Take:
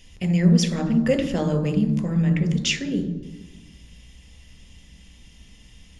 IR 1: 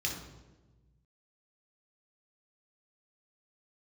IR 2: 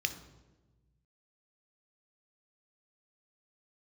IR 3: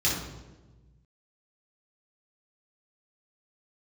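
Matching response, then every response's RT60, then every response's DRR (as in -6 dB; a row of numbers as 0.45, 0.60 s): 2; 1.2, 1.2, 1.2 s; -0.5, 8.5, -6.0 dB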